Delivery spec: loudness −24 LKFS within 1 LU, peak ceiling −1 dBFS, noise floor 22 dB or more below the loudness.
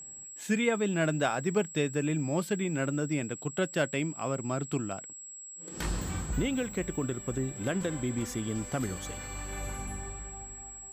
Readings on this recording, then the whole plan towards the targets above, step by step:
interfering tone 7,700 Hz; level of the tone −43 dBFS; integrated loudness −32.5 LKFS; sample peak −15.0 dBFS; target loudness −24.0 LKFS
→ notch filter 7,700 Hz, Q 30
level +8.5 dB

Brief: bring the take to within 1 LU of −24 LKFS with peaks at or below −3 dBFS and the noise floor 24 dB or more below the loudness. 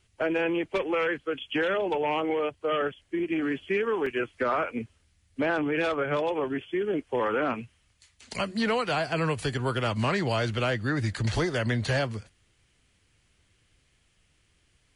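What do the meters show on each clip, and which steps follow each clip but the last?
number of dropouts 1; longest dropout 3.7 ms; integrated loudness −28.0 LKFS; sample peak −16.0 dBFS; target loudness −24.0 LKFS
→ repair the gap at 0:04.06, 3.7 ms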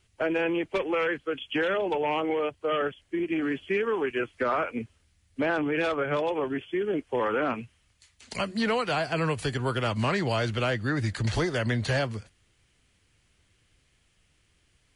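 number of dropouts 0; integrated loudness −28.0 LKFS; sample peak −16.0 dBFS; target loudness −24.0 LKFS
→ level +4 dB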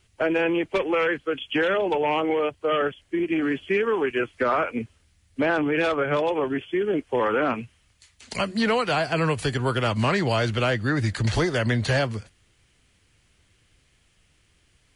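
integrated loudness −24.0 LKFS; sample peak −12.0 dBFS; background noise floor −64 dBFS

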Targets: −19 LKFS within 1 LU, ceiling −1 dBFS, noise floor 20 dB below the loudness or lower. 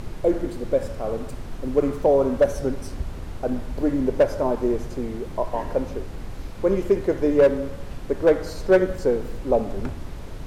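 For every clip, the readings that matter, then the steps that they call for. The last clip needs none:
share of clipped samples 0.7%; peaks flattened at −9.5 dBFS; background noise floor −35 dBFS; target noise floor −44 dBFS; integrated loudness −23.5 LKFS; sample peak −9.5 dBFS; target loudness −19.0 LKFS
→ clipped peaks rebuilt −9.5 dBFS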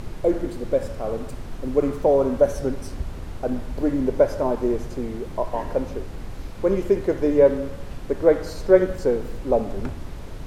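share of clipped samples 0.0%; background noise floor −35 dBFS; target noise floor −43 dBFS
→ noise reduction from a noise print 8 dB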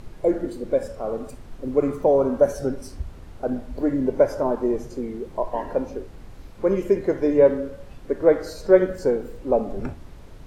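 background noise floor −43 dBFS; integrated loudness −23.0 LKFS; sample peak −3.0 dBFS; target loudness −19.0 LKFS
→ level +4 dB
brickwall limiter −1 dBFS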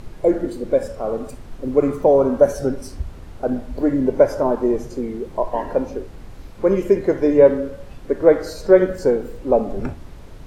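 integrated loudness −19.0 LKFS; sample peak −1.0 dBFS; background noise floor −39 dBFS

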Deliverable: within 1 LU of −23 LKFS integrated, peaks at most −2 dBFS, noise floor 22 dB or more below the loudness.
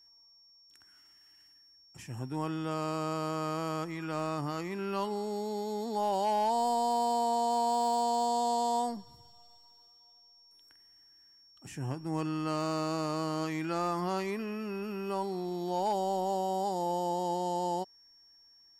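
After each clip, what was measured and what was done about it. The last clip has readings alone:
share of clipped samples 0.1%; peaks flattened at −23.0 dBFS; interfering tone 5,500 Hz; level of the tone −58 dBFS; integrated loudness −32.5 LKFS; sample peak −23.0 dBFS; target loudness −23.0 LKFS
→ clipped peaks rebuilt −23 dBFS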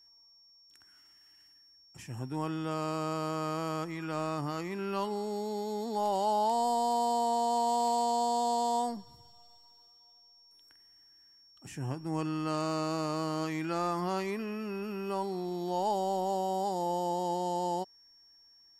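share of clipped samples 0.0%; interfering tone 5,500 Hz; level of the tone −58 dBFS
→ notch filter 5,500 Hz, Q 30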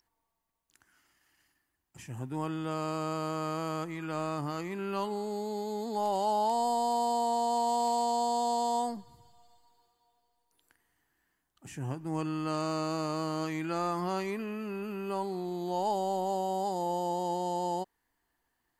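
interfering tone none found; integrated loudness −32.5 LKFS; sample peak −17.5 dBFS; target loudness −23.0 LKFS
→ level +9.5 dB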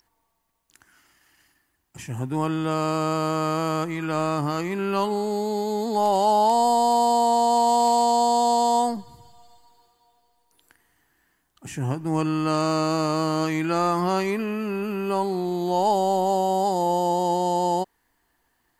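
integrated loudness −23.0 LKFS; sample peak −8.0 dBFS; background noise floor −71 dBFS

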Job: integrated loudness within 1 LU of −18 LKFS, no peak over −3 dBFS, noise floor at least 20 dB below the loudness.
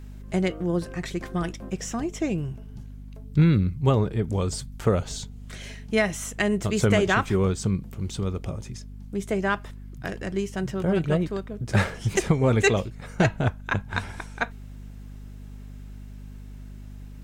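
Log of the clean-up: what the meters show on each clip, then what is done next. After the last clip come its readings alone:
mains hum 50 Hz; hum harmonics up to 250 Hz; level of the hum −39 dBFS; integrated loudness −26.0 LKFS; sample peak −8.5 dBFS; target loudness −18.0 LKFS
→ mains-hum notches 50/100/150/200/250 Hz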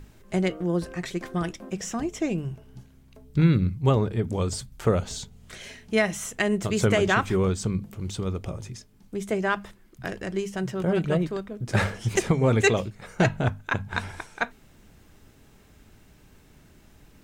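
mains hum none found; integrated loudness −26.5 LKFS; sample peak −8.5 dBFS; target loudness −18.0 LKFS
→ level +8.5 dB
brickwall limiter −3 dBFS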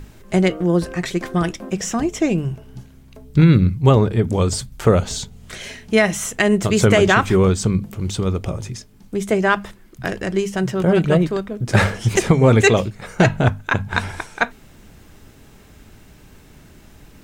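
integrated loudness −18.5 LKFS; sample peak −3.0 dBFS; background noise floor −47 dBFS

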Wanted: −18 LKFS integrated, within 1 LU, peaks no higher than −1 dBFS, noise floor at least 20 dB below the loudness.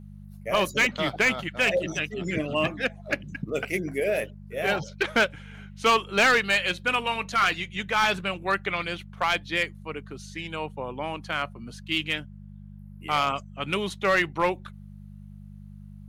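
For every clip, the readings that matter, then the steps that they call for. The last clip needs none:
share of clipped samples 0.7%; peaks flattened at −15.0 dBFS; mains hum 50 Hz; hum harmonics up to 200 Hz; level of the hum −42 dBFS; integrated loudness −26.0 LKFS; sample peak −15.0 dBFS; target loudness −18.0 LKFS
→ clipped peaks rebuilt −15 dBFS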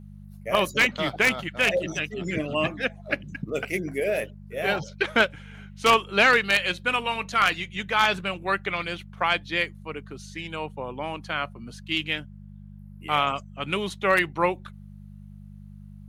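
share of clipped samples 0.0%; mains hum 50 Hz; hum harmonics up to 200 Hz; level of the hum −41 dBFS
→ hum removal 50 Hz, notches 4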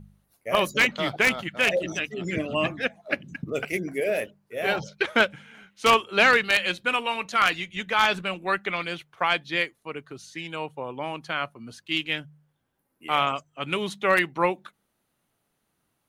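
mains hum none found; integrated loudness −25.0 LKFS; sample peak −6.0 dBFS; target loudness −18.0 LKFS
→ level +7 dB
brickwall limiter −1 dBFS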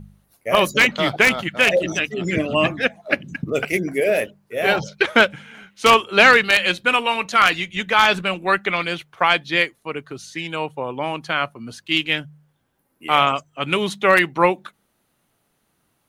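integrated loudness −18.5 LKFS; sample peak −1.0 dBFS; background noise floor −68 dBFS

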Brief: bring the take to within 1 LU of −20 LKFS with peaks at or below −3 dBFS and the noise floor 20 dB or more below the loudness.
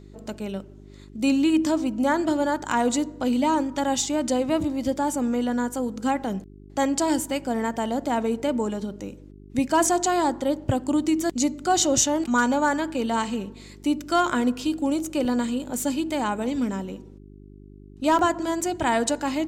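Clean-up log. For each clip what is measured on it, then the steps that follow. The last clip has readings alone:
number of dropouts 3; longest dropout 1.8 ms; mains hum 50 Hz; hum harmonics up to 400 Hz; level of the hum −44 dBFS; integrated loudness −24.5 LKFS; sample peak −7.5 dBFS; target loudness −20.0 LKFS
→ repair the gap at 0:06.24/0:15.25/0:18.19, 1.8 ms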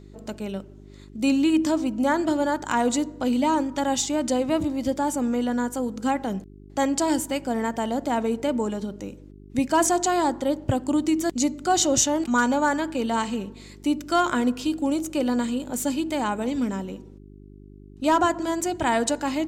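number of dropouts 0; mains hum 50 Hz; hum harmonics up to 400 Hz; level of the hum −44 dBFS
→ hum removal 50 Hz, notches 8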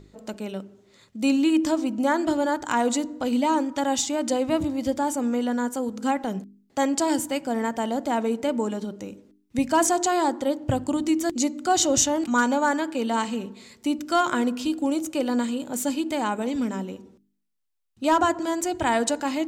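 mains hum none found; integrated loudness −24.5 LKFS; sample peak −8.0 dBFS; target loudness −20.0 LKFS
→ level +4.5 dB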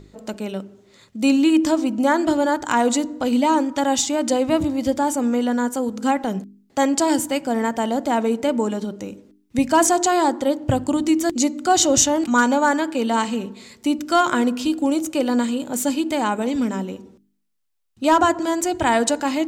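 integrated loudness −20.0 LKFS; sample peak −3.5 dBFS; background noise floor −60 dBFS

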